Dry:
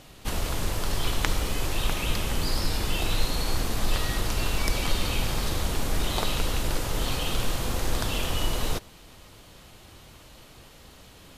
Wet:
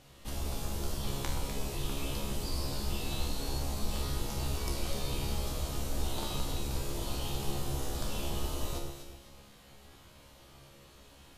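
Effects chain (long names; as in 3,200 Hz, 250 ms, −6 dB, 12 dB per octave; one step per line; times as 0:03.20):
dynamic equaliser 1,800 Hz, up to −8 dB, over −49 dBFS, Q 0.92
tuned comb filter 69 Hz, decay 0.68 s, harmonics all, mix 90%
delay that swaps between a low-pass and a high-pass 125 ms, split 1,300 Hz, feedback 54%, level −3 dB
level +3 dB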